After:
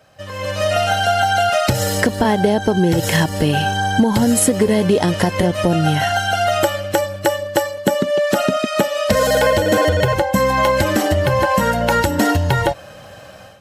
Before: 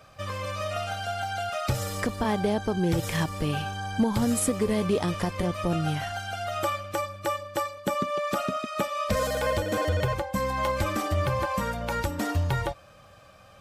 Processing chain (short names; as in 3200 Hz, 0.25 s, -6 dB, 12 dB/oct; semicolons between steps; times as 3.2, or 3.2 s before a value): compressor, threshold -26 dBFS, peak gain reduction 7.5 dB; notch comb 1200 Hz; AGC gain up to 14 dB; gain +2.5 dB